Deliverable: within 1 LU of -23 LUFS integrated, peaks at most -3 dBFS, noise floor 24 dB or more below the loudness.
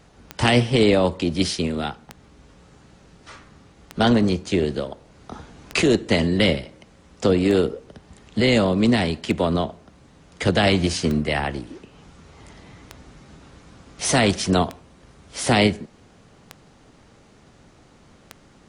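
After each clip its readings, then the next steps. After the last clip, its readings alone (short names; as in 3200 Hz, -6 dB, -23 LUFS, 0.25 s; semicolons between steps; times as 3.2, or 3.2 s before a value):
clicks 11; loudness -21.0 LUFS; peak -3.0 dBFS; loudness target -23.0 LUFS
-> de-click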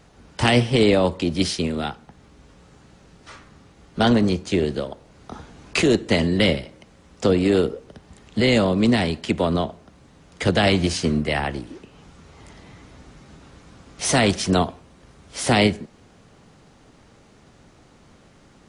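clicks 0; loudness -21.0 LUFS; peak -3.0 dBFS; loudness target -23.0 LUFS
-> gain -2 dB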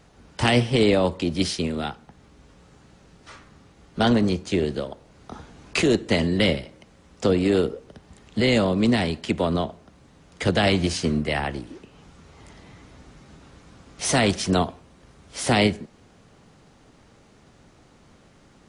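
loudness -23.0 LUFS; peak -5.0 dBFS; noise floor -55 dBFS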